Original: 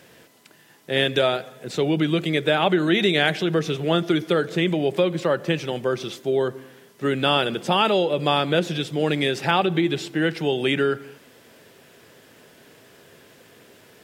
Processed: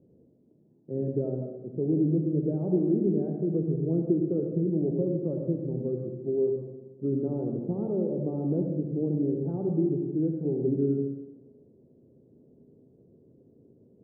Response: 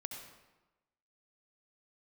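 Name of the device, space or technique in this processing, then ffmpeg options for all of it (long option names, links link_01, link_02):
next room: -filter_complex "[0:a]lowpass=frequency=400:width=0.5412,lowpass=frequency=400:width=1.3066[link_01];[1:a]atrim=start_sample=2205[link_02];[link_01][link_02]afir=irnorm=-1:irlink=0"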